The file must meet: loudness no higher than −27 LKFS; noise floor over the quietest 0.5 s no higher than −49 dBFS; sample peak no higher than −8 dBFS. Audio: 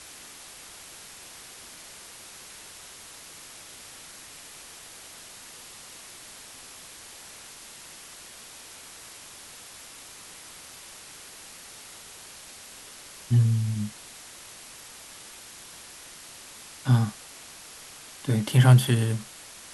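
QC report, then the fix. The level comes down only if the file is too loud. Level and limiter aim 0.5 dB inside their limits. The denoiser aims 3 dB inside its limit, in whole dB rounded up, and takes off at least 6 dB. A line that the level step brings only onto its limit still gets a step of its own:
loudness −23.5 LKFS: out of spec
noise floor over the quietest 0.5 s −46 dBFS: out of spec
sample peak −4.0 dBFS: out of spec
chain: level −4 dB
brickwall limiter −8.5 dBFS

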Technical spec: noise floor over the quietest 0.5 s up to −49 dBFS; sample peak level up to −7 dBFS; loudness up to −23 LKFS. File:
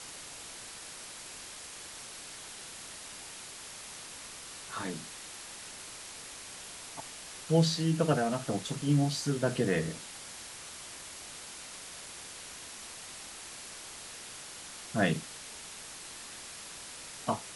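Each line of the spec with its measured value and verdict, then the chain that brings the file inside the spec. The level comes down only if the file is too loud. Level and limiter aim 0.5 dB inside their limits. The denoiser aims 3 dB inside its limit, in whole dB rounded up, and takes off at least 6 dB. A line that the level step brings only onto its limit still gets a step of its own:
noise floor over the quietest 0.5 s −46 dBFS: out of spec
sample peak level −12.5 dBFS: in spec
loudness −36.0 LKFS: in spec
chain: broadband denoise 6 dB, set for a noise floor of −46 dBFS

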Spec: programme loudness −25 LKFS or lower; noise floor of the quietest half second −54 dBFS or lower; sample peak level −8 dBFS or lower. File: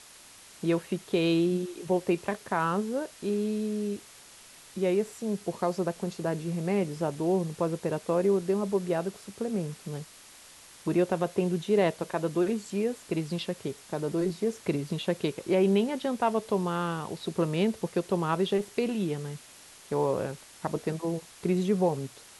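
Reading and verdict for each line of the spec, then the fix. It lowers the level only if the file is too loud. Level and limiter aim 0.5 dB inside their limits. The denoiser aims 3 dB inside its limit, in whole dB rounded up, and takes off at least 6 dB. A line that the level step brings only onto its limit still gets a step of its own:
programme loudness −29.5 LKFS: in spec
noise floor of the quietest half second −52 dBFS: out of spec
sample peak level −13.5 dBFS: in spec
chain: broadband denoise 6 dB, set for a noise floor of −52 dBFS

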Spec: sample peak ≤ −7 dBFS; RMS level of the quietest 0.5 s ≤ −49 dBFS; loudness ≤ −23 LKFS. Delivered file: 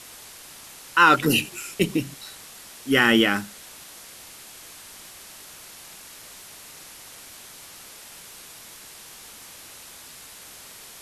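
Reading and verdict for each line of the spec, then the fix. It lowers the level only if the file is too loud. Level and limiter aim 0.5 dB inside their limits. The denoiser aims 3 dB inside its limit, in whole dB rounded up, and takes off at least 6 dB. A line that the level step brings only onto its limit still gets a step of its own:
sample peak −3.5 dBFS: out of spec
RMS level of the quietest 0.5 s −44 dBFS: out of spec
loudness −20.5 LKFS: out of spec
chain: broadband denoise 6 dB, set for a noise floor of −44 dBFS
level −3 dB
brickwall limiter −7.5 dBFS

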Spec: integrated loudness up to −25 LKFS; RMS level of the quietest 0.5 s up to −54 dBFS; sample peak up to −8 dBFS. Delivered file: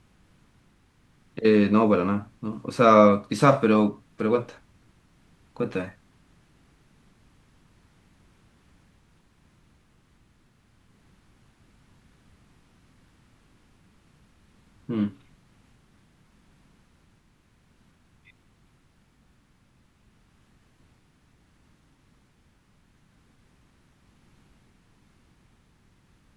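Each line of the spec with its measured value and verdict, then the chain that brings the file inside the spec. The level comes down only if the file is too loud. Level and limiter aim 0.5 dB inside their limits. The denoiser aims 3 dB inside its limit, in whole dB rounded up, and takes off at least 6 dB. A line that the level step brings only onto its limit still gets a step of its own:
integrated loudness −22.5 LKFS: out of spec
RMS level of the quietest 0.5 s −62 dBFS: in spec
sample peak −3.0 dBFS: out of spec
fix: level −3 dB
brickwall limiter −8.5 dBFS

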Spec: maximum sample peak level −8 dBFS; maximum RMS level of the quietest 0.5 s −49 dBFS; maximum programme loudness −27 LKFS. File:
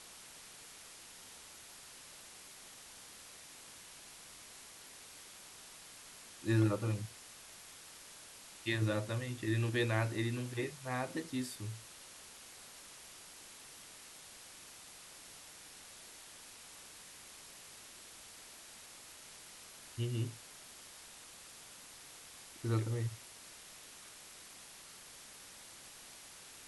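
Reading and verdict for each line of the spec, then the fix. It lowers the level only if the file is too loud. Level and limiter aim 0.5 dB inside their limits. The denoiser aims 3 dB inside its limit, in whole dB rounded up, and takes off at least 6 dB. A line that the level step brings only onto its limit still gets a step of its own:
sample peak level −19.5 dBFS: in spec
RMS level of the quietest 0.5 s −54 dBFS: in spec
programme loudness −43.0 LKFS: in spec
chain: no processing needed

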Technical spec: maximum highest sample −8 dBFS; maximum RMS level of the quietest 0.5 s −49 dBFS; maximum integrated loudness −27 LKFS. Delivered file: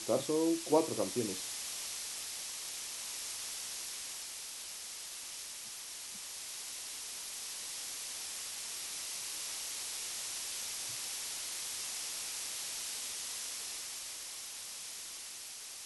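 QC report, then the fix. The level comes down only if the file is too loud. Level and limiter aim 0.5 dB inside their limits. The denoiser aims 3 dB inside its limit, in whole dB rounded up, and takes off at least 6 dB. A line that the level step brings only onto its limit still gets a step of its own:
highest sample −15.5 dBFS: in spec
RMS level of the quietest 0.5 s −47 dBFS: out of spec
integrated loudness −38.0 LKFS: in spec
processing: broadband denoise 6 dB, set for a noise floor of −47 dBFS

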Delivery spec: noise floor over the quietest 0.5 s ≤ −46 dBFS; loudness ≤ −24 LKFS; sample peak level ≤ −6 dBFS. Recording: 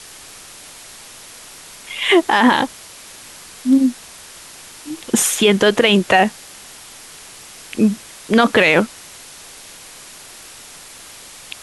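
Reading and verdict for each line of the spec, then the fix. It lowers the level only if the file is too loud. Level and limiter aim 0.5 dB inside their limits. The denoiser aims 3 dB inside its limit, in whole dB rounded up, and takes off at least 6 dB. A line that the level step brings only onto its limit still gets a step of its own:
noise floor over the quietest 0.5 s −39 dBFS: out of spec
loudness −15.5 LKFS: out of spec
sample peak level −3.0 dBFS: out of spec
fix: level −9 dB

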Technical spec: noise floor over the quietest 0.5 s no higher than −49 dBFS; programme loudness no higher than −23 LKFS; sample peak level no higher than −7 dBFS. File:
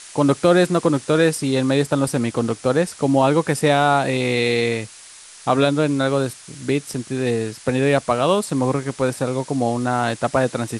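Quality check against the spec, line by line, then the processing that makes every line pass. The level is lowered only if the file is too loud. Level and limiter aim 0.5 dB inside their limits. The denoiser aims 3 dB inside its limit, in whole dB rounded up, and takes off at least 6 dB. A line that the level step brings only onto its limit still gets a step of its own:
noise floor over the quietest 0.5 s −43 dBFS: out of spec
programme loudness −19.5 LKFS: out of spec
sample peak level −4.0 dBFS: out of spec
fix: broadband denoise 6 dB, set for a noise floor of −43 dBFS
level −4 dB

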